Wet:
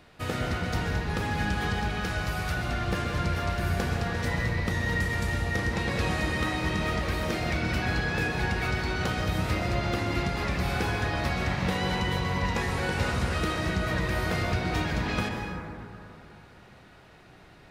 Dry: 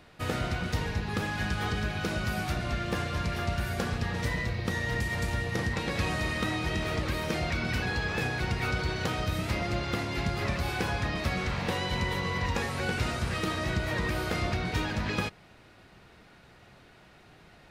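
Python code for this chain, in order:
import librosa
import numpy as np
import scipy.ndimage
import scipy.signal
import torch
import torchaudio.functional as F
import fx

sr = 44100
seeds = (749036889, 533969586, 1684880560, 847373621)

y = fx.peak_eq(x, sr, hz=260.0, db=-12.0, octaves=1.2, at=(1.95, 2.57))
y = fx.rev_plate(y, sr, seeds[0], rt60_s=2.9, hf_ratio=0.3, predelay_ms=110, drr_db=2.0)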